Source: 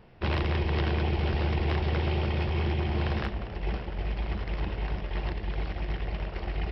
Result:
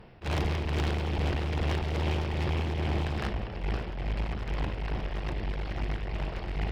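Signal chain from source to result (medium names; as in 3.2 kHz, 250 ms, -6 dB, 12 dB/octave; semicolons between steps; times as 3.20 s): one-sided clip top -36.5 dBFS, bottom -24.5 dBFS; tremolo 2.4 Hz, depth 32%; attacks held to a fixed rise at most 320 dB/s; trim +4 dB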